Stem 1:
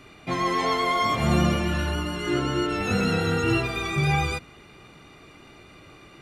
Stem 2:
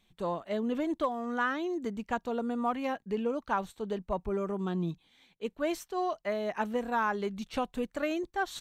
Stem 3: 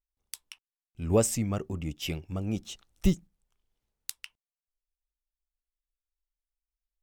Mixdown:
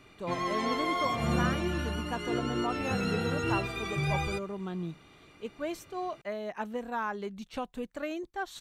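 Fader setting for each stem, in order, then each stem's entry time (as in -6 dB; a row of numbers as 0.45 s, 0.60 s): -7.5 dB, -4.0 dB, mute; 0.00 s, 0.00 s, mute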